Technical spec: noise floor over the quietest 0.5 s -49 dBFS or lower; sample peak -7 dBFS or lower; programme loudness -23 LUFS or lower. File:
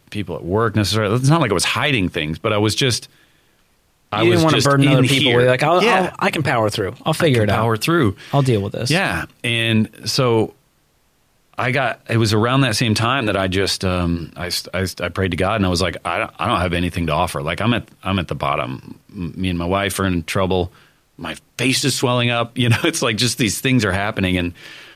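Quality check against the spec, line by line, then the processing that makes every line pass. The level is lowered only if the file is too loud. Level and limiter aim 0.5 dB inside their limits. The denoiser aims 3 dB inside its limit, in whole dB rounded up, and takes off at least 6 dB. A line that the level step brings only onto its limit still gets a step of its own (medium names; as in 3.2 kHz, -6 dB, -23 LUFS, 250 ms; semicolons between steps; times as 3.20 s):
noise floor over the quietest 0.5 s -60 dBFS: pass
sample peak -5.0 dBFS: fail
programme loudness -18.0 LUFS: fail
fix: trim -5.5 dB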